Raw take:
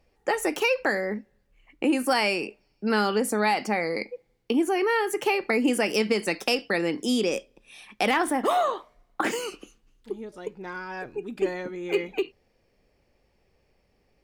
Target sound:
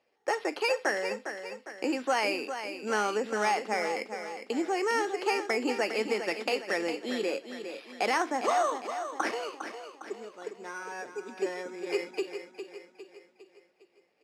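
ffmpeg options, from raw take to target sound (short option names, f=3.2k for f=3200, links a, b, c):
-filter_complex "[0:a]acrossover=split=3500[a][b];[b]acompressor=threshold=-48dB:ratio=4:attack=1:release=60[c];[a][c]amix=inputs=2:normalize=0,acrusher=samples=6:mix=1:aa=0.000001,highpass=370,lowpass=5.9k,asplit=2[d][e];[e]aecho=0:1:406|812|1218|1624|2030:0.355|0.17|0.0817|0.0392|0.0188[f];[d][f]amix=inputs=2:normalize=0,volume=-3dB"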